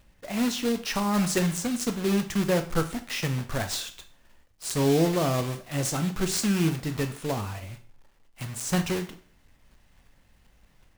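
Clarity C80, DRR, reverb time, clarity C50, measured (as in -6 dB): 17.0 dB, 7.5 dB, 0.45 s, 13.0 dB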